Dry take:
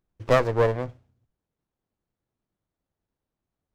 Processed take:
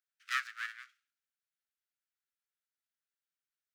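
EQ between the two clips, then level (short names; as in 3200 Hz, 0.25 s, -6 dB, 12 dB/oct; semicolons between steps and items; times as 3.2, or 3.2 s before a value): steep high-pass 1300 Hz 96 dB/oct; -4.0 dB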